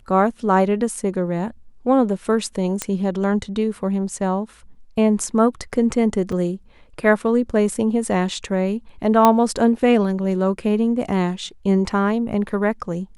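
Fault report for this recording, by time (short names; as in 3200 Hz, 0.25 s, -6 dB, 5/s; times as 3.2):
2.82 pop -7 dBFS
6.32 gap 4.7 ms
9.25 pop -1 dBFS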